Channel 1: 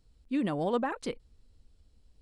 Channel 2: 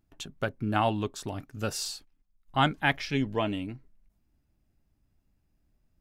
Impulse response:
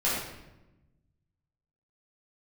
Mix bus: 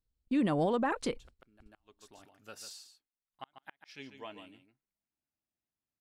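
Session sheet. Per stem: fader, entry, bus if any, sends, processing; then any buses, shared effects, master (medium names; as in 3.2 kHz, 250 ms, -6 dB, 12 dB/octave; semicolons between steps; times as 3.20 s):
+3.0 dB, 0.00 s, no send, no echo send, gate -53 dBFS, range -24 dB
-13.0 dB, 0.85 s, no send, echo send -9.5 dB, high-pass 700 Hz 6 dB/octave; inverted gate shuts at -18 dBFS, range -38 dB; auto duck -19 dB, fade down 1.95 s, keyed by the first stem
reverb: none
echo: delay 144 ms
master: peak limiter -22 dBFS, peak gain reduction 6.5 dB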